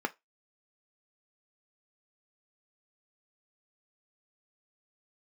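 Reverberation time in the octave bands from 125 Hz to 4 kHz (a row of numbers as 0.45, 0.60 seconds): 0.15, 0.20, 0.20, 0.20, 0.20, 0.15 seconds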